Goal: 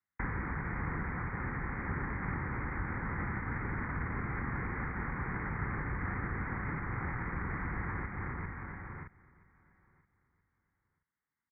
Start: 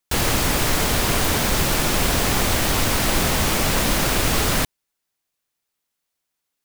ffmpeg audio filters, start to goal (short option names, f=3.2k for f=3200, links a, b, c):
-filter_complex "[0:a]acrossover=split=790[a][b];[a]acrusher=samples=33:mix=1:aa=0.000001:lfo=1:lforange=33:lforate=3.2[c];[c][b]amix=inputs=2:normalize=0,aresample=8000,aresample=44100,asplit=2[d][e];[e]aecho=0:1:162|229|399|560|586:0.422|0.398|0.15|0.133|0.119[f];[d][f]amix=inputs=2:normalize=0,acompressor=threshold=-26dB:ratio=4,equalizer=f=1.1k:t=o:w=0.33:g=-12.5,asetrate=25442,aresample=44100,highpass=45,equalizer=f=550:t=o:w=2.1:g=-6,aecho=1:1:976|1952:0.0631|0.0139,volume=-4dB"